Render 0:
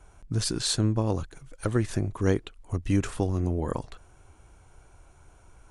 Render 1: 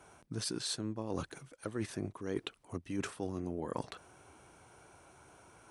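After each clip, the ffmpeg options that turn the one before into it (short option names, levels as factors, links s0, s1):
-af "highpass=170,bandreject=f=7000:w=11,areverse,acompressor=threshold=0.0178:ratio=16,areverse,volume=1.26"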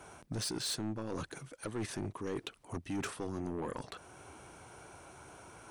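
-af "alimiter=level_in=1.41:limit=0.0631:level=0:latency=1:release=419,volume=0.708,asoftclip=type=tanh:threshold=0.0133,volume=2"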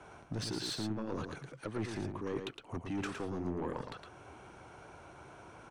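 -filter_complex "[0:a]acrossover=split=210[s0][s1];[s1]adynamicsmooth=sensitivity=4.5:basefreq=5000[s2];[s0][s2]amix=inputs=2:normalize=0,aecho=1:1:112:0.501"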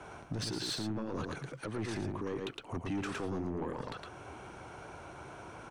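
-af "alimiter=level_in=2.99:limit=0.0631:level=0:latency=1:release=63,volume=0.335,volume=1.78"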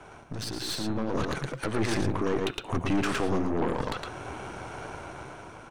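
-af "aeval=exprs='0.0398*(cos(1*acos(clip(val(0)/0.0398,-1,1)))-cos(1*PI/2))+0.00794*(cos(4*acos(clip(val(0)/0.0398,-1,1)))-cos(4*PI/2))':c=same,bandreject=f=178.9:t=h:w=4,bandreject=f=357.8:t=h:w=4,bandreject=f=536.7:t=h:w=4,bandreject=f=715.6:t=h:w=4,bandreject=f=894.5:t=h:w=4,bandreject=f=1073.4:t=h:w=4,bandreject=f=1252.3:t=h:w=4,bandreject=f=1431.2:t=h:w=4,bandreject=f=1610.1:t=h:w=4,bandreject=f=1789:t=h:w=4,bandreject=f=1967.9:t=h:w=4,bandreject=f=2146.8:t=h:w=4,bandreject=f=2325.7:t=h:w=4,bandreject=f=2504.6:t=h:w=4,bandreject=f=2683.5:t=h:w=4,bandreject=f=2862.4:t=h:w=4,bandreject=f=3041.3:t=h:w=4,bandreject=f=3220.2:t=h:w=4,bandreject=f=3399.1:t=h:w=4,bandreject=f=3578:t=h:w=4,bandreject=f=3756.9:t=h:w=4,bandreject=f=3935.8:t=h:w=4,bandreject=f=4114.7:t=h:w=4,dynaudnorm=f=270:g=7:m=2.82"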